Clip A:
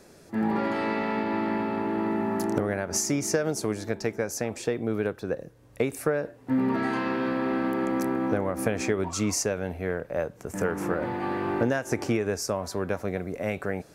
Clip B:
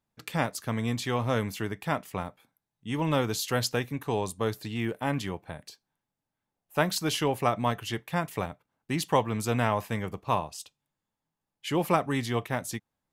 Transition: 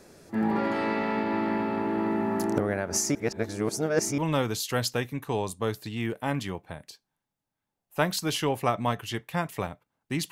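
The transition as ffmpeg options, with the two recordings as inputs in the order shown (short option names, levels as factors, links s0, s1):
-filter_complex "[0:a]apad=whole_dur=10.31,atrim=end=10.31,asplit=2[s0][s1];[s0]atrim=end=3.152[s2];[s1]atrim=start=3.148:end=4.182,asetpts=PTS-STARTPTS,areverse[s3];[1:a]atrim=start=2.968:end=9.1[s4];[s2][s3]acrossfade=d=0.004:c1=hsin:c2=hsin[s5];[s5][s4]acrossfade=d=0.004:c1=hsin:c2=hsin"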